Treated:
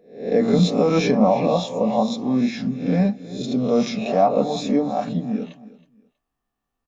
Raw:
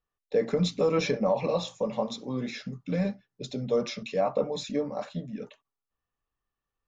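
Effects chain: spectral swells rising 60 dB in 0.50 s; small resonant body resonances 240/710 Hz, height 11 dB, ringing for 25 ms; on a send: feedback echo 0.321 s, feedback 22%, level -18.5 dB; on the sum: gain +2.5 dB

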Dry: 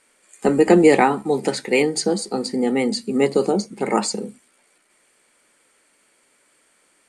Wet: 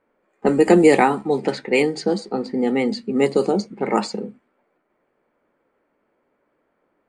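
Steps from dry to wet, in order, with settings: low-pass opened by the level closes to 920 Hz, open at -11.5 dBFS

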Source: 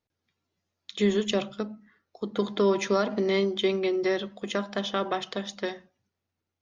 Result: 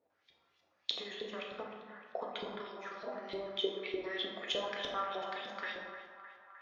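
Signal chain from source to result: 2.49–3.86 level quantiser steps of 22 dB; limiter -24 dBFS, peak gain reduction 10.5 dB; compressor 6:1, threshold -44 dBFS, peak gain reduction 15.5 dB; LFO band-pass saw up 3.3 Hz 440–4200 Hz; narrowing echo 0.306 s, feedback 74%, band-pass 1300 Hz, level -11.5 dB; plate-style reverb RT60 1.3 s, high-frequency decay 0.55×, DRR -0.5 dB; gain +14 dB

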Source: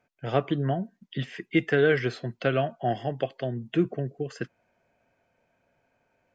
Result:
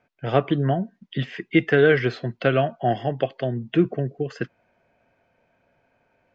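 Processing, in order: LPF 4500 Hz 12 dB/oct; gain +5 dB

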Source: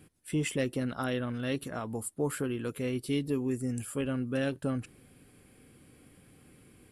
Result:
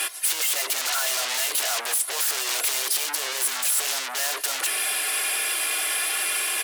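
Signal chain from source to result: comb 3 ms, depth 99%; overdrive pedal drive 34 dB, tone 1200 Hz, clips at -17 dBFS; tilt +3 dB/oct; sine folder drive 13 dB, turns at -19.5 dBFS; speed mistake 24 fps film run at 25 fps; HPF 530 Hz 24 dB/oct; high shelf 2400 Hz +9 dB; gain -6.5 dB

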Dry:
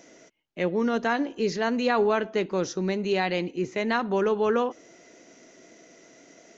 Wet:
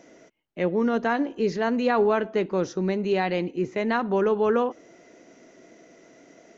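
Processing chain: high shelf 2800 Hz -9.5 dB; gain +2 dB

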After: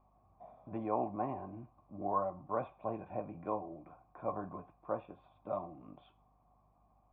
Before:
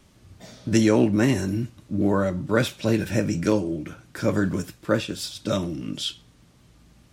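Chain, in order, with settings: vocal tract filter a; hum 50 Hz, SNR 32 dB; gain +4.5 dB

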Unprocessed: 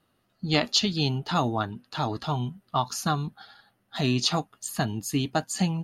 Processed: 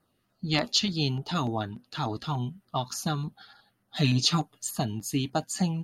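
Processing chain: 3.96–4.71 comb 6.7 ms, depth 93%; LFO notch saw down 3.4 Hz 400–3500 Hz; gain -1.5 dB

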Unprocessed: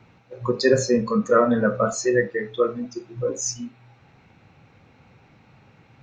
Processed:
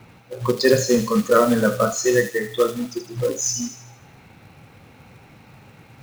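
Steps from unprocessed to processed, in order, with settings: in parallel at -1.5 dB: compressor 16:1, threshold -32 dBFS, peak gain reduction 21 dB; on the sum: short-mantissa float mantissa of 2-bit; thin delay 78 ms, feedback 49%, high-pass 2800 Hz, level -5 dB; gain +1 dB

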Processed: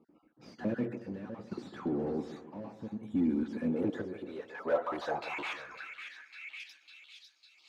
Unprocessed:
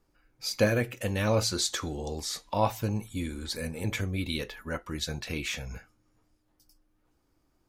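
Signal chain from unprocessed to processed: random spectral dropouts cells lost 32%; overdrive pedal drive 31 dB, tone 3600 Hz, clips at -15.5 dBFS; chopper 0.66 Hz, depth 65%, duty 65%; on a send: split-band echo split 1500 Hz, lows 0.149 s, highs 0.552 s, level -12.5 dB; on the sum: band-pass sweep 230 Hz -> 4100 Hz, 3.54–7.26

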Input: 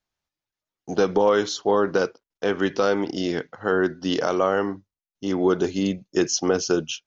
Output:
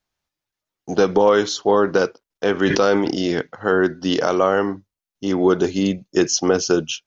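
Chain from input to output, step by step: 2.54–3.41 sustainer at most 41 dB/s; gain +4 dB

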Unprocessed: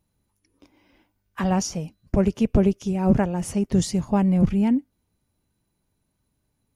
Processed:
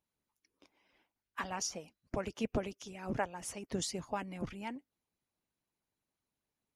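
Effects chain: LPF 2700 Hz 6 dB/oct; tilt +2.5 dB/oct; harmonic-percussive split harmonic -13 dB; low shelf 240 Hz -4 dB; gain -5 dB

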